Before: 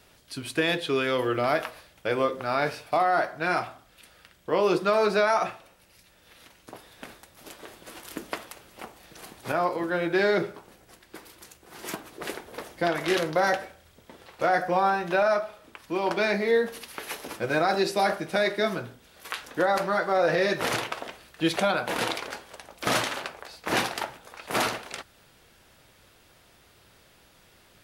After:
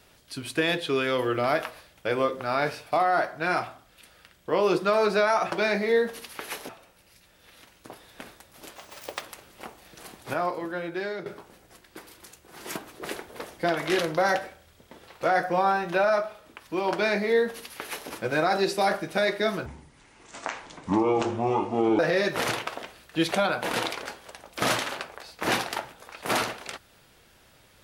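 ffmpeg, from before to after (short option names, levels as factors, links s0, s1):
-filter_complex "[0:a]asplit=8[s0][s1][s2][s3][s4][s5][s6][s7];[s0]atrim=end=5.522[s8];[s1]atrim=start=16.108:end=17.282[s9];[s2]atrim=start=5.518:end=7.594[s10];[s3]atrim=start=7.59:end=8.4,asetpts=PTS-STARTPTS,asetrate=78057,aresample=44100,atrim=end_sample=20181,asetpts=PTS-STARTPTS[s11];[s4]atrim=start=8.396:end=10.44,asetpts=PTS-STARTPTS,afade=t=out:st=0.914:d=1.13:silence=0.211349[s12];[s5]atrim=start=10.44:end=18.844,asetpts=PTS-STARTPTS,afade=t=in:d=0.004:c=hsin:silence=0.211349[s13];[s6]atrim=start=18.84:end=20.24,asetpts=PTS-STARTPTS,asetrate=26460,aresample=44100[s14];[s7]atrim=start=20.236[s15];[s8][s9]acrossfade=d=0.004:c1=hsin:c2=hsin[s16];[s16][s10]acrossfade=d=0.004:c1=hsin:c2=hsin[s17];[s17][s11]acrossfade=d=0.004:c1=hsin:c2=hsin[s18];[s12][s13]concat=n=2:v=0:a=1[s19];[s18][s19]acrossfade=d=0.004:c1=hsin:c2=hsin[s20];[s20][s14]acrossfade=d=0.004:c1=hsin:c2=hsin[s21];[s21][s15]acrossfade=d=0.004:c1=hsin:c2=hsin"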